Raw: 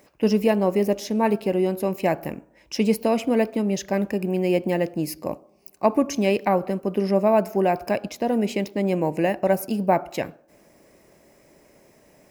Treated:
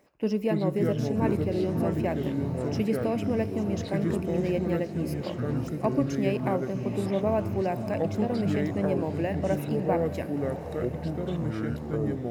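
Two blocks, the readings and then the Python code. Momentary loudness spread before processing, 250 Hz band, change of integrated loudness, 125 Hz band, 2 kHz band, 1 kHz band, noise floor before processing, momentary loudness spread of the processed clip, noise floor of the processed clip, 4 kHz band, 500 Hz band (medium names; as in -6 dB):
9 LU, -3.0 dB, -5.0 dB, +2.5 dB, -6.5 dB, -8.5 dB, -57 dBFS, 5 LU, -36 dBFS, -8.0 dB, -5.5 dB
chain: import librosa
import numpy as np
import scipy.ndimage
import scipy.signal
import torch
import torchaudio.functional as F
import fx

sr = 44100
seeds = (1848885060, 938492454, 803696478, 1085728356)

p1 = fx.high_shelf(x, sr, hz=3500.0, db=-7.0)
p2 = p1 + fx.echo_diffused(p1, sr, ms=625, feedback_pct=60, wet_db=-12, dry=0)
p3 = fx.echo_pitch(p2, sr, ms=203, semitones=-5, count=3, db_per_echo=-3.0)
p4 = fx.dynamic_eq(p3, sr, hz=870.0, q=2.1, threshold_db=-31.0, ratio=4.0, max_db=-3)
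y = p4 * 10.0 ** (-7.0 / 20.0)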